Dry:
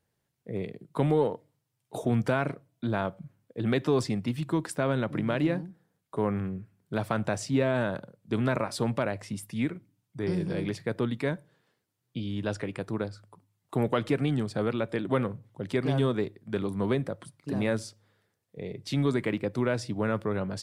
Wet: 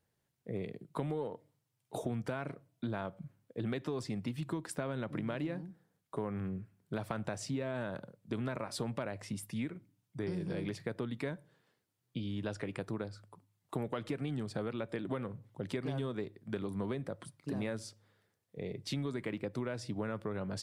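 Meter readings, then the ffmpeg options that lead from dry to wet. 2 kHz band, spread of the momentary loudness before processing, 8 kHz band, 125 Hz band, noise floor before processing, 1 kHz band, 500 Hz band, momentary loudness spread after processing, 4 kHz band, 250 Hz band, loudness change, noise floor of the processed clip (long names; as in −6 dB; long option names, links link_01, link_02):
−9.5 dB, 11 LU, −5.5 dB, −9.0 dB, −80 dBFS, −10.0 dB, −10.0 dB, 8 LU, −7.0 dB, −9.0 dB, −9.5 dB, −82 dBFS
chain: -af "acompressor=threshold=-31dB:ratio=6,volume=-2.5dB"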